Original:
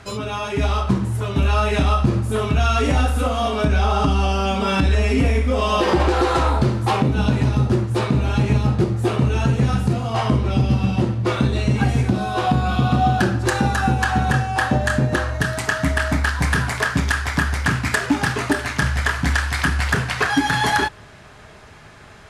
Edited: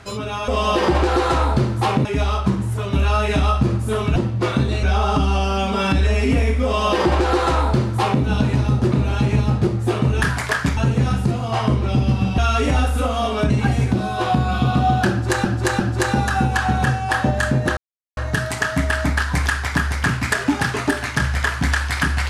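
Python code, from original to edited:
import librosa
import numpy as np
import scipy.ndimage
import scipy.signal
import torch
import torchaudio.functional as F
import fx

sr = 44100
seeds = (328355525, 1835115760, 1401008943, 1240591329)

y = fx.edit(x, sr, fx.swap(start_s=2.59, length_s=1.12, other_s=11.0, other_length_s=0.67),
    fx.duplicate(start_s=5.53, length_s=1.57, to_s=0.48),
    fx.cut(start_s=7.8, length_s=0.29),
    fx.repeat(start_s=13.27, length_s=0.35, count=3),
    fx.insert_silence(at_s=15.24, length_s=0.4),
    fx.move(start_s=16.53, length_s=0.55, to_s=9.39), tone=tone)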